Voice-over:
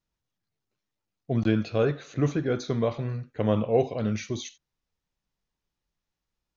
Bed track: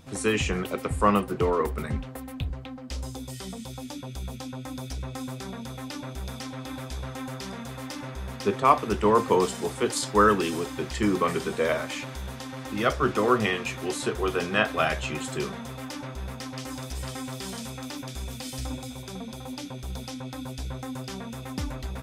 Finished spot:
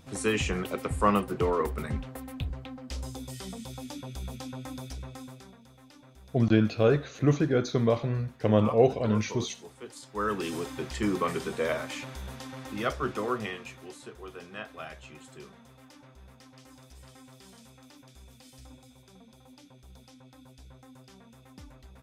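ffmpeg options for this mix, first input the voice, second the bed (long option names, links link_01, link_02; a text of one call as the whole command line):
ffmpeg -i stem1.wav -i stem2.wav -filter_complex "[0:a]adelay=5050,volume=1.5dB[link_01];[1:a]volume=11.5dB,afade=type=out:start_time=4.64:duration=0.95:silence=0.16788,afade=type=in:start_time=10.1:duration=0.46:silence=0.199526,afade=type=out:start_time=12.53:duration=1.47:silence=0.223872[link_02];[link_01][link_02]amix=inputs=2:normalize=0" out.wav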